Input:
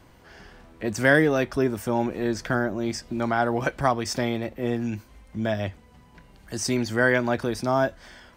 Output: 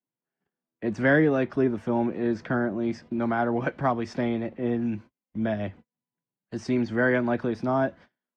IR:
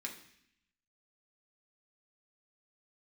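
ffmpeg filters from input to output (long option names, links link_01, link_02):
-filter_complex "[0:a]agate=range=-39dB:threshold=-41dB:ratio=16:detection=peak,acrossover=split=330|440|2100[link_01][link_02][link_03][link_04];[link_01]acontrast=50[link_05];[link_05][link_02][link_03][link_04]amix=inputs=4:normalize=0,highpass=150,lowpass=2700,volume=-3dB" -ar 48000 -c:a libvorbis -b:a 64k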